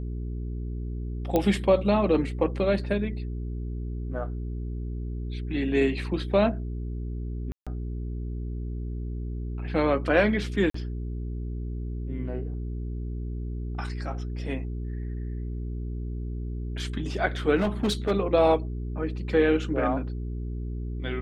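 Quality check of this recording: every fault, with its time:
hum 60 Hz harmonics 7 -32 dBFS
1.36 pop -11 dBFS
7.52–7.67 gap 0.146 s
10.7–10.74 gap 44 ms
17.56–18.12 clipped -20 dBFS

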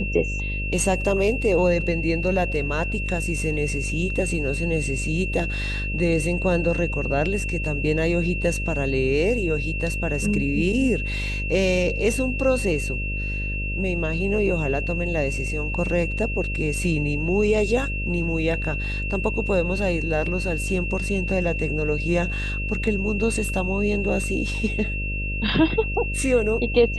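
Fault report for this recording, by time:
buzz 50 Hz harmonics 12 -28 dBFS
tone 2700 Hz -29 dBFS

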